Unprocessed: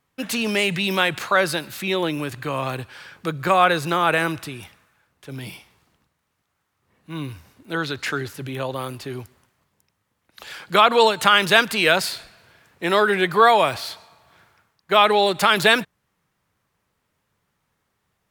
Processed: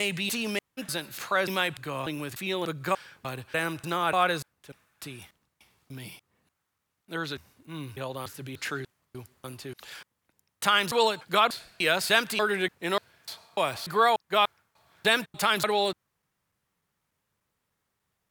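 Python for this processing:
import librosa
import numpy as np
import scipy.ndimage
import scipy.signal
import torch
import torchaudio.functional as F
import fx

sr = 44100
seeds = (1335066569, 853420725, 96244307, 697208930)

y = fx.block_reorder(x, sr, ms=295.0, group=3)
y = fx.high_shelf(y, sr, hz=5100.0, db=5.5)
y = y * 10.0 ** (-8.0 / 20.0)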